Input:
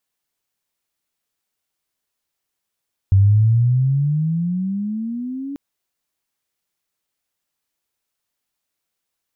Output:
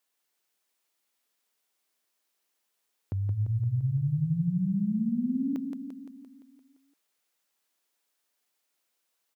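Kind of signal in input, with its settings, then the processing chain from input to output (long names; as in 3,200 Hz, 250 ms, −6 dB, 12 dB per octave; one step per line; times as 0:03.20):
pitch glide with a swell sine, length 2.44 s, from 95.1 Hz, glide +19 semitones, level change −17 dB, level −8.5 dB
high-pass filter 260 Hz 12 dB per octave
on a send: repeating echo 172 ms, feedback 59%, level −5.5 dB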